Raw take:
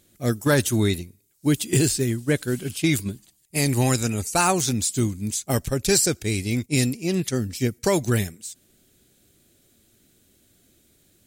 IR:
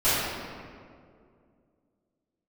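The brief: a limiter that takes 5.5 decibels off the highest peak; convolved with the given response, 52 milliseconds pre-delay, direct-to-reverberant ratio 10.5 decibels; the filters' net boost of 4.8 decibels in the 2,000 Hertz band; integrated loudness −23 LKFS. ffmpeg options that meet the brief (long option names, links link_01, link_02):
-filter_complex "[0:a]equalizer=frequency=2000:width_type=o:gain=6,alimiter=limit=-12dB:level=0:latency=1,asplit=2[link_01][link_02];[1:a]atrim=start_sample=2205,adelay=52[link_03];[link_02][link_03]afir=irnorm=-1:irlink=0,volume=-27.5dB[link_04];[link_01][link_04]amix=inputs=2:normalize=0,volume=0.5dB"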